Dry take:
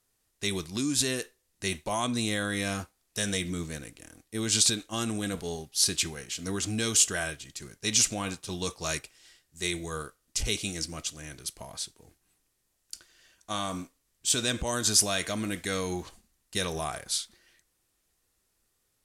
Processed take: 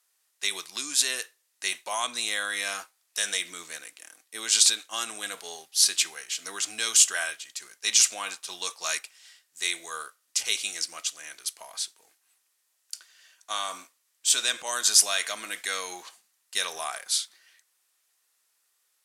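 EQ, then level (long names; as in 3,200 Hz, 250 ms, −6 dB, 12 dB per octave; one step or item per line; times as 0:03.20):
high-pass filter 940 Hz 12 dB per octave
+4.0 dB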